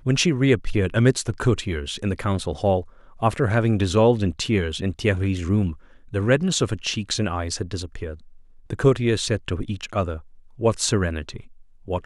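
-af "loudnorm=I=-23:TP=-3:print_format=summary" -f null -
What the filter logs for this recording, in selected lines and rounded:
Input Integrated:    -23.2 LUFS
Input True Peak:      -5.5 dBTP
Input LRA:             3.8 LU
Input Threshold:     -33.8 LUFS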